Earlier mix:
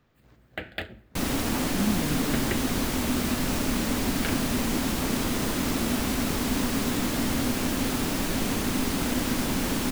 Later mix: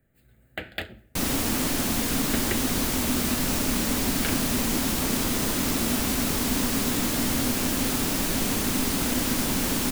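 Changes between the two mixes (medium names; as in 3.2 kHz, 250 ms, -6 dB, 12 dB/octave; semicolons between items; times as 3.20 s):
speech: muted; master: add treble shelf 4.6 kHz +7 dB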